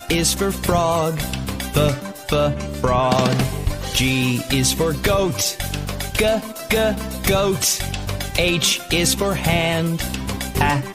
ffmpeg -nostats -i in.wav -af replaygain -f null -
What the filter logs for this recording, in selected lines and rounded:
track_gain = +0.4 dB
track_peak = 0.459